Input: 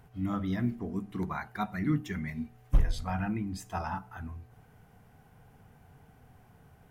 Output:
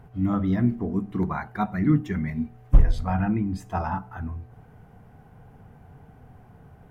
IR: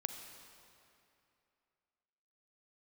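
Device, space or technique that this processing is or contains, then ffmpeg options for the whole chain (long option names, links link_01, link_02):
through cloth: -af "highshelf=frequency=2100:gain=-13,volume=8.5dB"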